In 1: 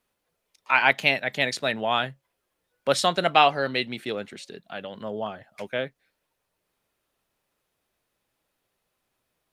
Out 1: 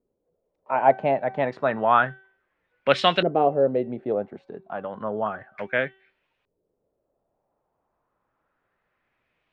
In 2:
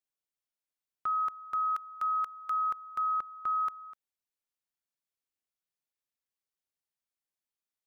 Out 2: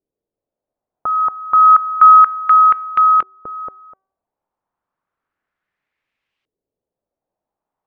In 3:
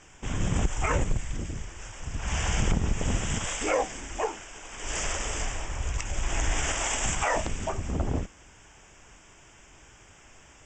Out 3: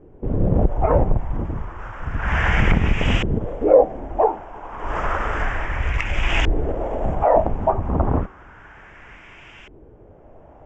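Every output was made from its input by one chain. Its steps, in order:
de-hum 383.5 Hz, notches 29; LFO low-pass saw up 0.31 Hz 400–2900 Hz; peak normalisation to -1.5 dBFS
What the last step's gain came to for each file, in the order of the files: +2.0 dB, +17.0 dB, +8.0 dB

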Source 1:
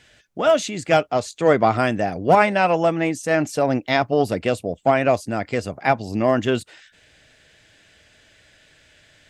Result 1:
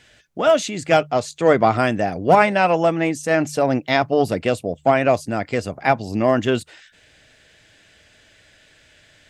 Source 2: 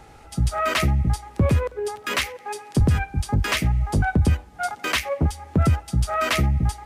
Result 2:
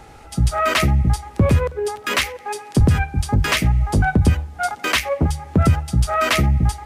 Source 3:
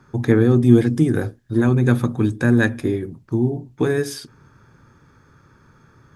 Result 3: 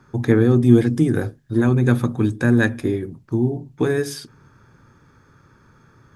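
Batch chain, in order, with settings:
de-hum 74.39 Hz, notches 2; normalise loudness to -19 LUFS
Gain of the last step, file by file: +1.0 dB, +4.0 dB, -0.5 dB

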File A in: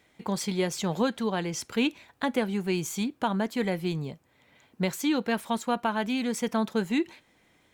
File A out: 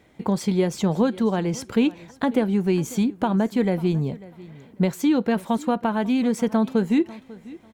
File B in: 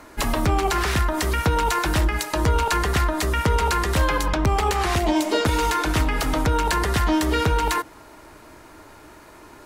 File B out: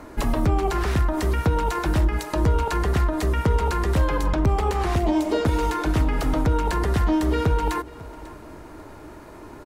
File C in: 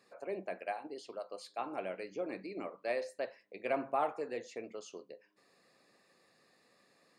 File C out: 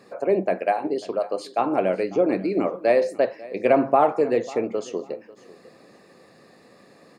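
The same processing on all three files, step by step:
compression 1.5:1, threshold -33 dBFS; tilt shelf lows +5.5 dB; feedback delay 545 ms, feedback 23%, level -20 dB; normalise loudness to -23 LUFS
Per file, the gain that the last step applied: +6.0 dB, +1.5 dB, +15.5 dB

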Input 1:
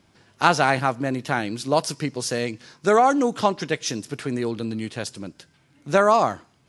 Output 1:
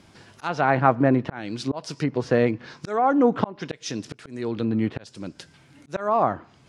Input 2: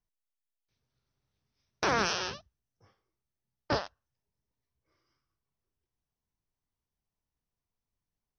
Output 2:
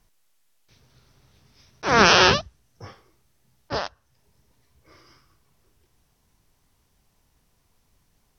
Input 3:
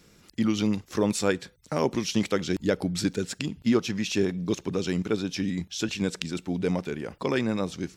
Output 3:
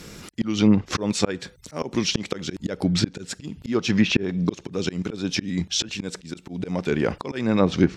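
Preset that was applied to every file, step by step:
slow attack 570 ms; low-pass that closes with the level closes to 1.6 kHz, closed at -27.5 dBFS; peak normalisation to -3 dBFS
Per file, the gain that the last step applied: +7.0 dB, +23.5 dB, +15.5 dB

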